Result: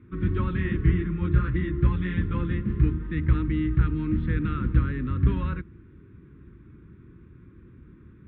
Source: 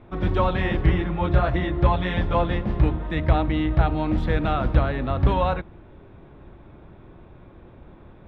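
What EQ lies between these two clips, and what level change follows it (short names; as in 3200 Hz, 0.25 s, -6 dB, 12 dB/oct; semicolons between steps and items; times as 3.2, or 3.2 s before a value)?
HPF 54 Hz; Butterworth band-stop 700 Hz, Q 0.59; LPF 1600 Hz 12 dB/oct; 0.0 dB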